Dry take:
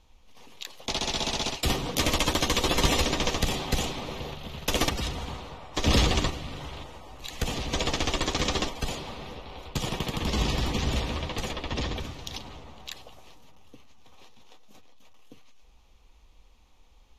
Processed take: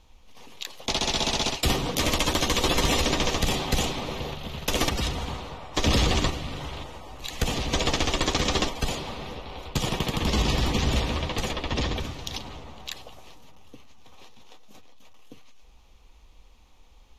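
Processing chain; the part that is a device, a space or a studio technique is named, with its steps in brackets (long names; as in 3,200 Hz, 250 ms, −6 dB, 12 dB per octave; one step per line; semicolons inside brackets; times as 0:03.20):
clipper into limiter (hard clipping −10.5 dBFS, distortion −52 dB; brickwall limiter −16.5 dBFS, peak gain reduction 6 dB)
level +3.5 dB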